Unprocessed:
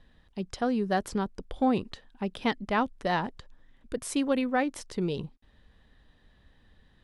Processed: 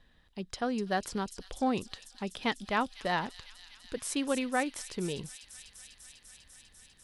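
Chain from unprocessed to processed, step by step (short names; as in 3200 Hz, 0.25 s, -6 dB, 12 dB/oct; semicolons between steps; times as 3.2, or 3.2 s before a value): tilt shelf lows -3 dB; on a send: thin delay 0.248 s, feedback 84%, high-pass 4700 Hz, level -6 dB; on the sum: gain -2.5 dB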